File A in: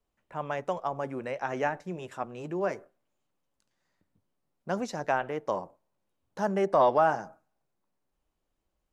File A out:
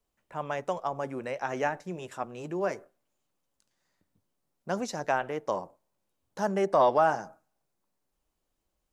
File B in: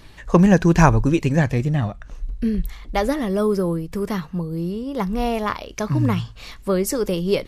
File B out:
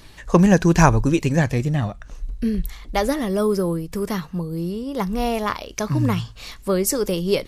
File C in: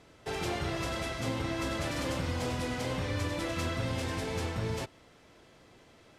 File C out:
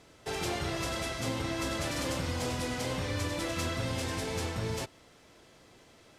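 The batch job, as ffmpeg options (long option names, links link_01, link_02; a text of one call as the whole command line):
ffmpeg -i in.wav -af "bass=frequency=250:gain=-1,treble=frequency=4000:gain=5" out.wav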